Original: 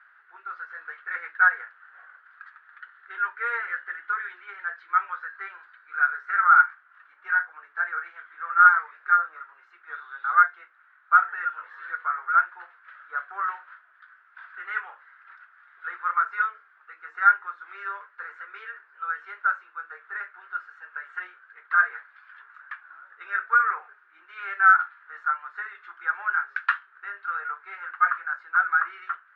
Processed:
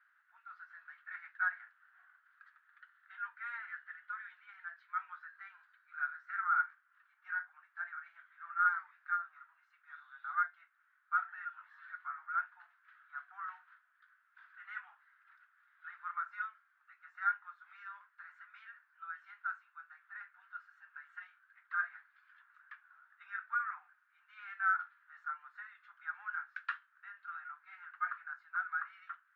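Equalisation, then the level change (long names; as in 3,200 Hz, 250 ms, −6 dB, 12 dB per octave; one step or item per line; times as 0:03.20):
Butterworth high-pass 650 Hz 96 dB per octave
first difference
high-shelf EQ 2,500 Hz −11.5 dB
+1.5 dB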